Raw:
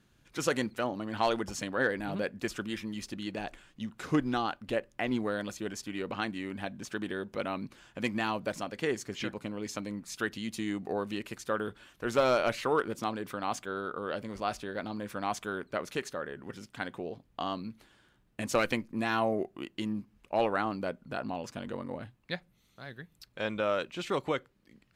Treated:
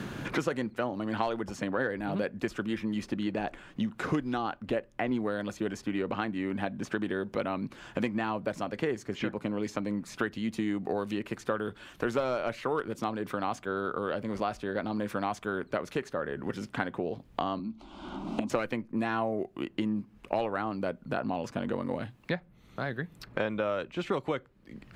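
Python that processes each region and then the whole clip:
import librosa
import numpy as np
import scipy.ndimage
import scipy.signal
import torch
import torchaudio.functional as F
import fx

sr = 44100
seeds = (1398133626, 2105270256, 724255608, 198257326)

y = fx.chain(x, sr, fx.air_absorb(metres=110.0),
    fx.fixed_phaser(hz=470.0, stages=6),
    fx.band_squash(depth_pct=100), at=(17.59, 18.5))
y = fx.high_shelf(y, sr, hz=2900.0, db=-10.5)
y = fx.band_squash(y, sr, depth_pct=100)
y = F.gain(torch.from_numpy(y), 1.5).numpy()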